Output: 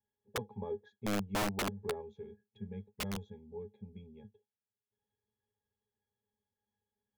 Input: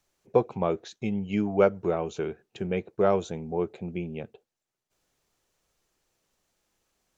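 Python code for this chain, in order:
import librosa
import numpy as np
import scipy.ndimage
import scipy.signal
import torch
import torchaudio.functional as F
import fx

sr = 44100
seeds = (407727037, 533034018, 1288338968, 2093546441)

y = fx.octave_resonator(x, sr, note='G#', decay_s=0.12)
y = (np.mod(10.0 ** (26.0 / 20.0) * y + 1.0, 2.0) - 1.0) / 10.0 ** (26.0 / 20.0)
y = fx.spec_box(y, sr, start_s=2.02, length_s=2.36, low_hz=220.0, high_hz=2000.0, gain_db=-7)
y = y * librosa.db_to_amplitude(-2.0)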